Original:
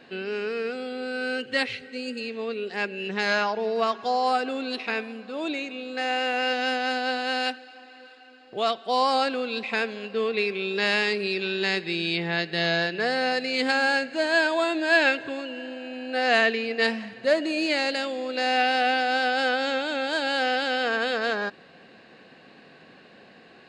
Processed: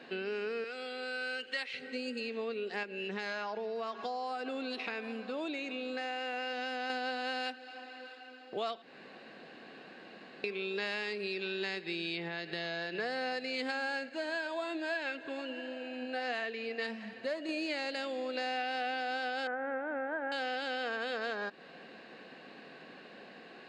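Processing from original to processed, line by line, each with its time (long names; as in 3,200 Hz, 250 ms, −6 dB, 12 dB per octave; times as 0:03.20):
0:00.64–0:01.74: high-pass filter 1,200 Hz 6 dB per octave
0:02.83–0:06.90: downward compressor 2.5 to 1, threshold −31 dBFS
0:08.82–0:10.44: fill with room tone
0:12.28–0:12.95: downward compressor 2.5 to 1, threshold −30 dBFS
0:14.09–0:17.49: flanger 1.2 Hz, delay 1.4 ms, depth 3.9 ms, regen +76%
0:19.47–0:20.32: elliptic low-pass filter 1,900 Hz, stop band 80 dB
whole clip: high-pass filter 190 Hz; high-shelf EQ 6,700 Hz −5.5 dB; downward compressor 4 to 1, threshold −35 dBFS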